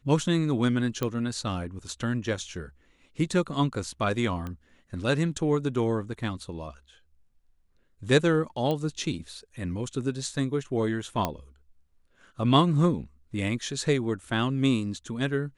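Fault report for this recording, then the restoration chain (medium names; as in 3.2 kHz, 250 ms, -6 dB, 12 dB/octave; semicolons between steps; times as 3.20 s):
1.03 s: pop -14 dBFS
4.47 s: pop -23 dBFS
8.71 s: pop -17 dBFS
11.25 s: pop -12 dBFS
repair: de-click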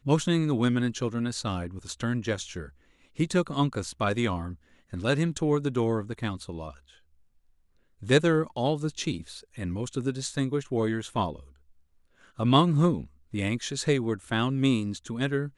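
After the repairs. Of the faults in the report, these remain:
nothing left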